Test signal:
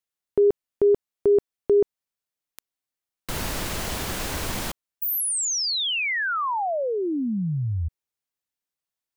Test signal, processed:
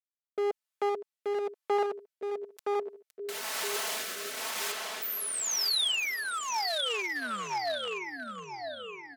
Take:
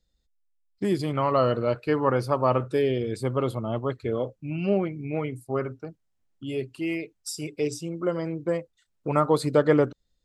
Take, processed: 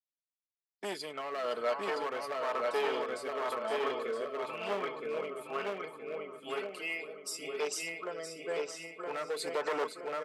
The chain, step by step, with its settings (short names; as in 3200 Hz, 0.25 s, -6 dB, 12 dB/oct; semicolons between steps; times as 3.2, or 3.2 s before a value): darkening echo 0.968 s, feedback 43%, low-pass 4600 Hz, level -3 dB; gate with hold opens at -23 dBFS, hold 0.409 s, range -26 dB; comb 4.6 ms, depth 50%; feedback echo 0.515 s, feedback 44%, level -13 dB; one-sided clip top -20 dBFS; HPF 730 Hz 12 dB/oct; limiter -21 dBFS; rotary speaker horn 1 Hz